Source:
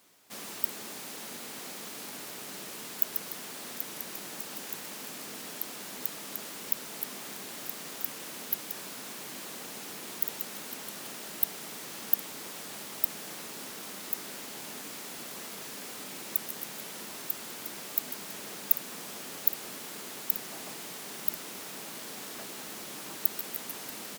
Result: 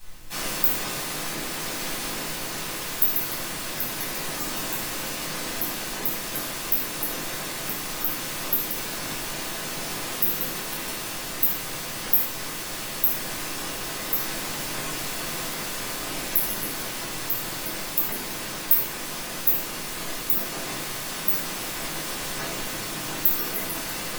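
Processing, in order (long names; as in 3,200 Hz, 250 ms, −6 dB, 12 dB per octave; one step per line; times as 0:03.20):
spectral magnitudes quantised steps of 30 dB
background noise brown −65 dBFS
convolution reverb RT60 0.65 s, pre-delay 6 ms, DRR −7 dB
in parallel at −1 dB: speech leveller 2 s
on the sum: level −4.5 dB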